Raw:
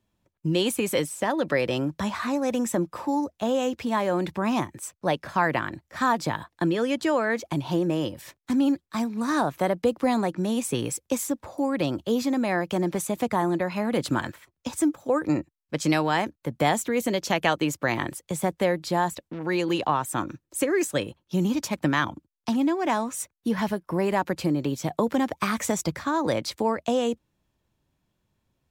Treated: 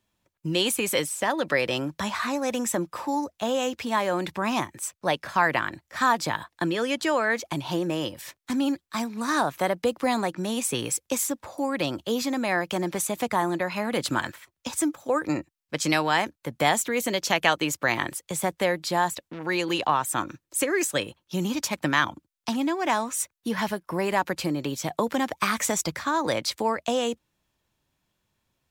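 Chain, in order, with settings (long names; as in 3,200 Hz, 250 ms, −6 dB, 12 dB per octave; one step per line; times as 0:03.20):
tilt shelving filter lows −4.5 dB, about 700 Hz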